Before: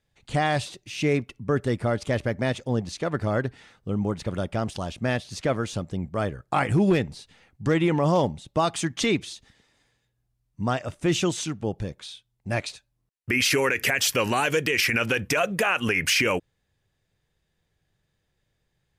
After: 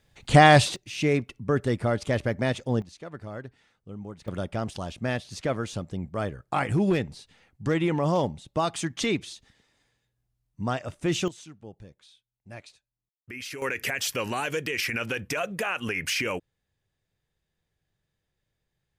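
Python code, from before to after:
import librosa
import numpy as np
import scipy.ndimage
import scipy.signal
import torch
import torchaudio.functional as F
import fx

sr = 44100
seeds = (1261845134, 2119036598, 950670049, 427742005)

y = fx.gain(x, sr, db=fx.steps((0.0, 9.0), (0.76, -0.5), (2.82, -13.0), (4.28, -3.0), (11.28, -16.0), (13.62, -6.0)))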